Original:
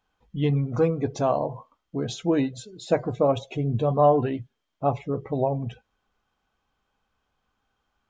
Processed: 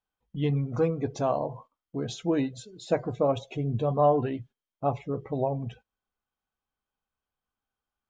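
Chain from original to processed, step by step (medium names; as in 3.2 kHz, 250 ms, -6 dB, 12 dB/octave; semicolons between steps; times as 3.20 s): gate -45 dBFS, range -12 dB; trim -3.5 dB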